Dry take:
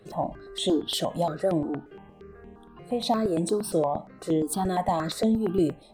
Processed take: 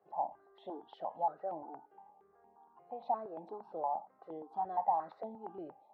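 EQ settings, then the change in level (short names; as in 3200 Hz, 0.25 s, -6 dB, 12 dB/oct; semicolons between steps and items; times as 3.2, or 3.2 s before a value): band-pass 840 Hz, Q 8.8; air absorption 250 m; +2.5 dB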